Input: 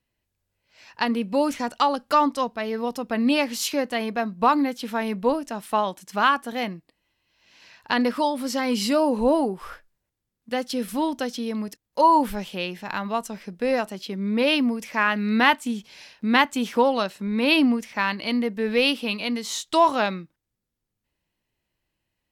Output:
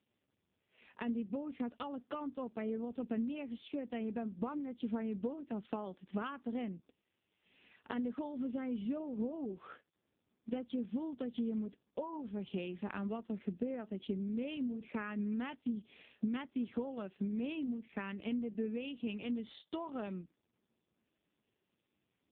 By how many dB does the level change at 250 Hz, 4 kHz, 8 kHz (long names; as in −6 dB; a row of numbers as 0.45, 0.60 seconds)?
−12.5 dB, −26.0 dB, below −40 dB